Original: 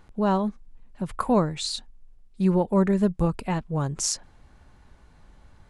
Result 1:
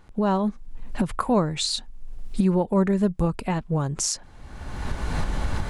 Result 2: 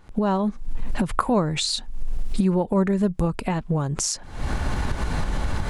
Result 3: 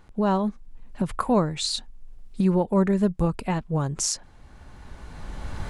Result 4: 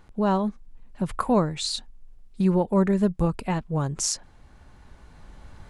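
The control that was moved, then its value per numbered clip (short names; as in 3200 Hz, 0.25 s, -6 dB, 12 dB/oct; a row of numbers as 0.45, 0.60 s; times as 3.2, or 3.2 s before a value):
recorder AGC, rising by: 34, 87, 14, 5.2 dB/s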